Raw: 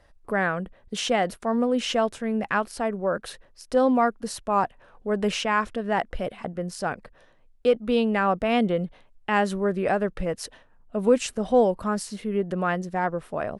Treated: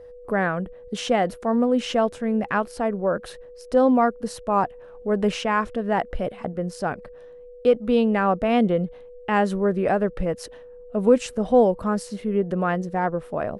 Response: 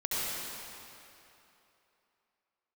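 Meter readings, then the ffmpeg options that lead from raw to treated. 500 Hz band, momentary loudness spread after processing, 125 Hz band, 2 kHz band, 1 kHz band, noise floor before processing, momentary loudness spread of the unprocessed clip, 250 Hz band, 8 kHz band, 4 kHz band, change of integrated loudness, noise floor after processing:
+2.5 dB, 11 LU, +3.5 dB, -0.5 dB, +1.5 dB, -57 dBFS, 11 LU, +3.5 dB, -3.5 dB, -2.5 dB, +2.5 dB, -44 dBFS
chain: -af "tiltshelf=f=1400:g=3.5,aeval=exprs='val(0)+0.00891*sin(2*PI*490*n/s)':c=same"

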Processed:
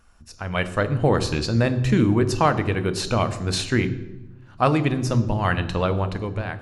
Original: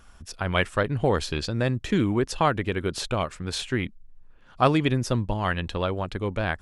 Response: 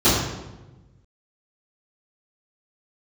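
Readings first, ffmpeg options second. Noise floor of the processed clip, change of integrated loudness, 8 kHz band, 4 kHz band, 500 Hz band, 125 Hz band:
-48 dBFS, +3.5 dB, +3.5 dB, +2.0 dB, +2.5 dB, +5.5 dB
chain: -filter_complex "[0:a]bandreject=f=3300:w=8.1,dynaudnorm=f=100:g=13:m=3.76,asplit=2[s0][s1];[1:a]atrim=start_sample=2205,highshelf=f=4800:g=10[s2];[s1][s2]afir=irnorm=-1:irlink=0,volume=0.0237[s3];[s0][s3]amix=inputs=2:normalize=0,volume=0.562"

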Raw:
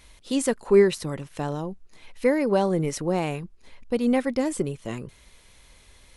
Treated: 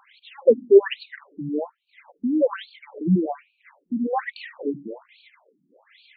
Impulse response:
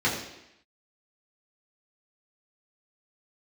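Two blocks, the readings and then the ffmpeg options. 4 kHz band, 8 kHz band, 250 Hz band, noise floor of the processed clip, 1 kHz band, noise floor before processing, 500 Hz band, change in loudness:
-2.0 dB, under -40 dB, 0.0 dB, -71 dBFS, -1.0 dB, -55 dBFS, +2.0 dB, +2.0 dB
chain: -filter_complex "[0:a]aphaser=in_gain=1:out_gain=1:delay=2.2:decay=0.52:speed=1.9:type=sinusoidal,asplit=2[s0][s1];[1:a]atrim=start_sample=2205,asetrate=52920,aresample=44100[s2];[s1][s2]afir=irnorm=-1:irlink=0,volume=0.0316[s3];[s0][s3]amix=inputs=2:normalize=0,afftfilt=real='re*between(b*sr/1024,230*pow(3300/230,0.5+0.5*sin(2*PI*1.2*pts/sr))/1.41,230*pow(3300/230,0.5+0.5*sin(2*PI*1.2*pts/sr))*1.41)':imag='im*between(b*sr/1024,230*pow(3300/230,0.5+0.5*sin(2*PI*1.2*pts/sr))/1.41,230*pow(3300/230,0.5+0.5*sin(2*PI*1.2*pts/sr))*1.41)':win_size=1024:overlap=0.75,volume=2"

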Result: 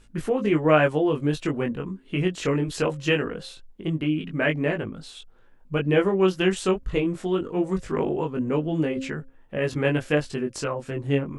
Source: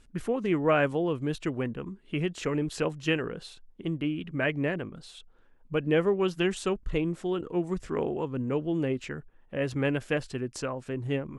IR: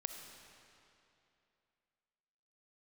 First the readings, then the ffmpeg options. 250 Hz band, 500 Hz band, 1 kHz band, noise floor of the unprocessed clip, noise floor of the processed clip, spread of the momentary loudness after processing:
+5.0 dB, +5.0 dB, +5.0 dB, -58 dBFS, -53 dBFS, 10 LU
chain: -af "bandreject=f=266.3:t=h:w=4,bandreject=f=532.6:t=h:w=4,flanger=delay=19:depth=2.5:speed=0.22,volume=2.51"

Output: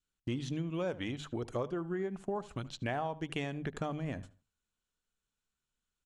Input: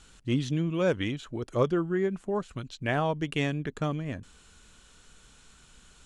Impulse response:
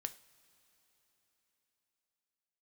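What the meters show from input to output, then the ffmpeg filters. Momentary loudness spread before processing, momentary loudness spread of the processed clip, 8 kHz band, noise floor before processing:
8 LU, 4 LU, -6.0 dB, -57 dBFS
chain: -filter_complex "[0:a]agate=range=0.0224:threshold=0.00708:ratio=16:detection=peak,bandreject=f=50:t=h:w=6,bandreject=f=100:t=h:w=6,bandreject=f=150:t=h:w=6,adynamicequalizer=threshold=0.00631:dfrequency=780:dqfactor=2.2:tfrequency=780:tqfactor=2.2:attack=5:release=100:ratio=0.375:range=4:mode=boostabove:tftype=bell,acompressor=threshold=0.0224:ratio=6,asplit=2[s0][s1];[s1]adelay=76,lowpass=f=2600:p=1,volume=0.141,asplit=2[s2][s3];[s3]adelay=76,lowpass=f=2600:p=1,volume=0.28,asplit=2[s4][s5];[s5]adelay=76,lowpass=f=2600:p=1,volume=0.28[s6];[s2][s4][s6]amix=inputs=3:normalize=0[s7];[s0][s7]amix=inputs=2:normalize=0"

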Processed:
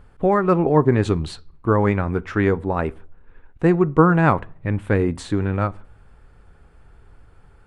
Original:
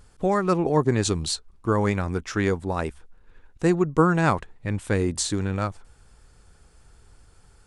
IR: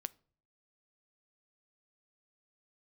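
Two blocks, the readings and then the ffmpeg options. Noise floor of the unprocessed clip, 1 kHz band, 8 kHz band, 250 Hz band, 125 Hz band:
-56 dBFS, +4.5 dB, under -10 dB, +4.5 dB, +5.0 dB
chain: -filter_complex "[0:a]asplit=2[s0][s1];[1:a]atrim=start_sample=2205,lowpass=2600[s2];[s1][s2]afir=irnorm=-1:irlink=0,volume=5.96[s3];[s0][s3]amix=inputs=2:normalize=0,volume=0.316"

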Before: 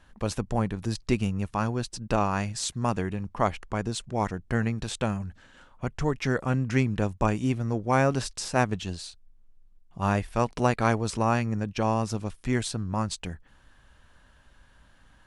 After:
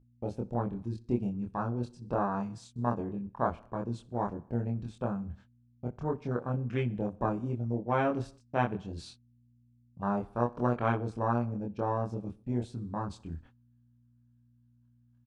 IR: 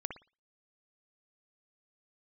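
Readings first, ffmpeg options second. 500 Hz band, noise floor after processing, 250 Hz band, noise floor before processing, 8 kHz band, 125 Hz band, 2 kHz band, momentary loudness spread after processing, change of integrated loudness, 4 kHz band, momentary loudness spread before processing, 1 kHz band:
-4.5 dB, -65 dBFS, -5.0 dB, -58 dBFS, under -20 dB, -6.0 dB, -10.0 dB, 9 LU, -5.5 dB, -17.0 dB, 7 LU, -5.0 dB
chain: -filter_complex "[0:a]afwtdn=0.0355,areverse,acompressor=mode=upward:threshold=0.0501:ratio=2.5,areverse,highpass=f=110:p=1,highshelf=f=5700:g=-10.5,asplit=2[s0][s1];[s1]aecho=0:1:62|124|186|248:0.0794|0.0453|0.0258|0.0147[s2];[s0][s2]amix=inputs=2:normalize=0,agate=range=0.01:threshold=0.00501:ratio=16:detection=peak,aeval=exprs='val(0)+0.00158*(sin(2*PI*60*n/s)+sin(2*PI*2*60*n/s)/2+sin(2*PI*3*60*n/s)/3+sin(2*PI*4*60*n/s)/4+sin(2*PI*5*60*n/s)/5)':c=same,equalizer=f=1900:w=4.5:g=-6.5,bandreject=f=2900:w=29,asplit=2[s3][s4];[s4]adelay=25,volume=0.794[s5];[s3][s5]amix=inputs=2:normalize=0,volume=0.501"

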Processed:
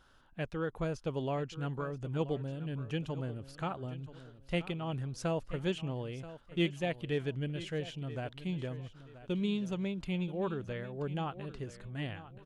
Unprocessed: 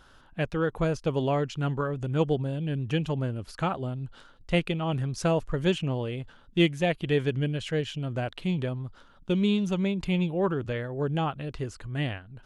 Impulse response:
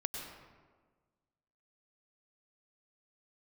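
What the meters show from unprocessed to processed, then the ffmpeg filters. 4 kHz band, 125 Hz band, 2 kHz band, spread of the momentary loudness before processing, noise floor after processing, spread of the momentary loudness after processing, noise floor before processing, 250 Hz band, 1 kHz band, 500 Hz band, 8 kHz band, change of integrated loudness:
-8.5 dB, -8.5 dB, -8.5 dB, 9 LU, -58 dBFS, 9 LU, -56 dBFS, -8.5 dB, -8.5 dB, -8.5 dB, -8.5 dB, -8.5 dB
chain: -af "aecho=1:1:980|1960|2940:0.178|0.0551|0.0171,volume=0.376"

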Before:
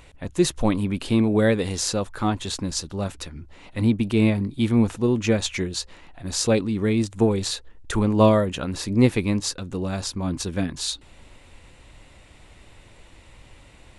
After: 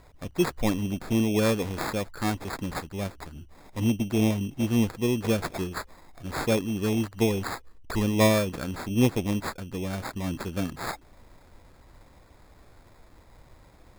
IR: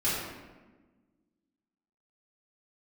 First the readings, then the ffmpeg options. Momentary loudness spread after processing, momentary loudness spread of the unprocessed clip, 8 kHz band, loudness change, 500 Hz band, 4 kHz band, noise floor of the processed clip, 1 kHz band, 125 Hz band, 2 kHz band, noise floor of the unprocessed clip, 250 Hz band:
12 LU, 11 LU, -8.5 dB, -4.5 dB, -4.5 dB, -6.5 dB, -55 dBFS, -3.0 dB, -4.5 dB, -1.5 dB, -51 dBFS, -4.5 dB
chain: -af "acrusher=samples=15:mix=1:aa=0.000001,volume=0.596"

